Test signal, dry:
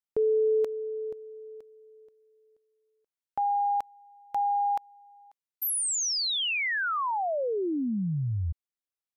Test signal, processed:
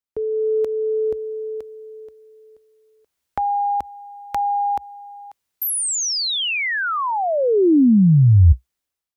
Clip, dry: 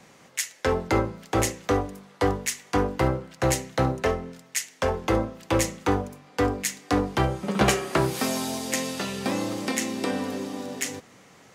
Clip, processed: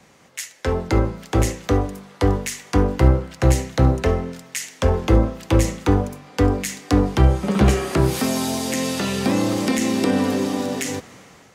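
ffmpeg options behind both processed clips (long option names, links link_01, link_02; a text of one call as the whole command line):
ffmpeg -i in.wav -filter_complex "[0:a]dynaudnorm=framelen=300:gausssize=5:maxgain=16dB,equalizer=frequency=63:width=1.9:gain=9.5,acrossover=split=390[link_01][link_02];[link_02]acompressor=threshold=-23dB:ratio=4:attack=2.4:release=94:knee=2.83:detection=peak[link_03];[link_01][link_03]amix=inputs=2:normalize=0" out.wav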